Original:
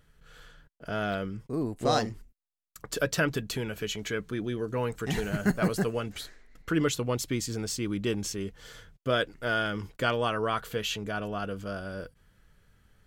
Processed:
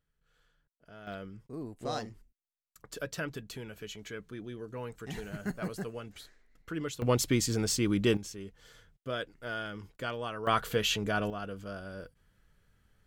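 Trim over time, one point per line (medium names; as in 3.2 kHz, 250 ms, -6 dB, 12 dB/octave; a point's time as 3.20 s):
-19 dB
from 1.07 s -10 dB
from 7.02 s +3 dB
from 8.17 s -9 dB
from 10.47 s +2.5 dB
from 11.30 s -5.5 dB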